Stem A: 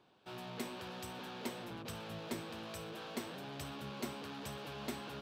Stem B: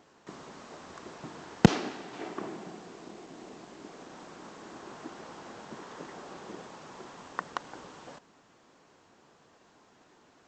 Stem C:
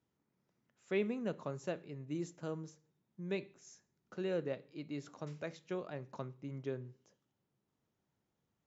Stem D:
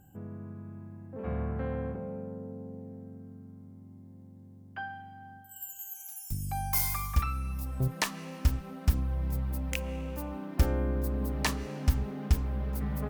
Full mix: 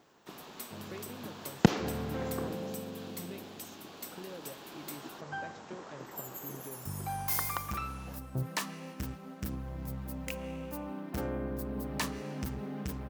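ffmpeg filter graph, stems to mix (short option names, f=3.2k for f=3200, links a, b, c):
-filter_complex "[0:a]aemphasis=mode=production:type=riaa,volume=-8dB[a];[1:a]volume=-3.5dB[b];[2:a]acompressor=threshold=-43dB:ratio=6,volume=-0.5dB[c];[3:a]asoftclip=type=tanh:threshold=-24.5dB,highpass=110,agate=range=-33dB:threshold=-39dB:ratio=3:detection=peak,adelay=550,volume=-0.5dB[d];[a][b][c][d]amix=inputs=4:normalize=0"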